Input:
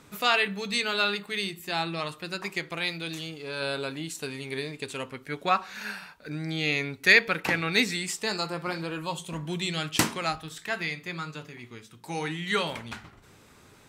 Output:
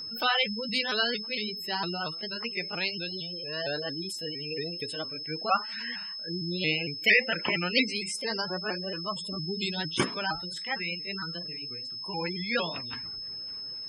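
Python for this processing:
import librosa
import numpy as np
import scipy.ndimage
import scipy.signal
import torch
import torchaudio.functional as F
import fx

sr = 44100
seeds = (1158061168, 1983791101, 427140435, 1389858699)

y = fx.pitch_ramps(x, sr, semitones=3.5, every_ms=229)
y = fx.spec_gate(y, sr, threshold_db=-15, keep='strong')
y = y + 10.0 ** (-36.0 / 20.0) * np.sin(2.0 * np.pi * 5200.0 * np.arange(len(y)) / sr)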